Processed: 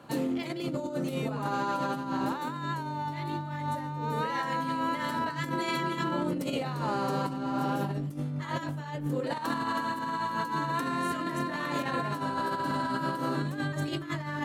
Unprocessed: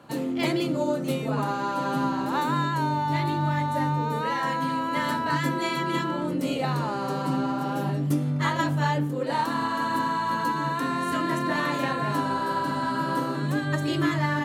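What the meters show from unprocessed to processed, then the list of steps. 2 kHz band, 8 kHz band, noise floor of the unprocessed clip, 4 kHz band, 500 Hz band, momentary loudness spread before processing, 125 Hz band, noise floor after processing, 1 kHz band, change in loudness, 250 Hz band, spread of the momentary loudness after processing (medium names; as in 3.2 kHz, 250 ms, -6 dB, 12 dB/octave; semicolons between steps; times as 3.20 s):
-5.5 dB, -5.0 dB, -29 dBFS, -5.0 dB, -4.5 dB, 3 LU, -6.5 dB, -37 dBFS, -5.0 dB, -5.5 dB, -5.5 dB, 4 LU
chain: compressor with a negative ratio -28 dBFS, ratio -0.5; trim -3 dB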